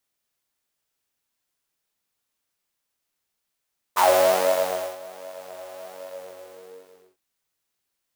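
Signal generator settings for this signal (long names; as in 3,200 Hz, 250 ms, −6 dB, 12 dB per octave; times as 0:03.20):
subtractive patch with pulse-width modulation F#2, oscillator 2 saw, detune 24 cents, oscillator 2 level −3.5 dB, noise −8.5 dB, filter highpass, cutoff 400 Hz, Q 10, filter envelope 1.5 octaves, filter decay 0.13 s, attack 23 ms, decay 0.99 s, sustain −23.5 dB, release 1.22 s, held 1.99 s, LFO 1.3 Hz, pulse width 32%, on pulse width 9%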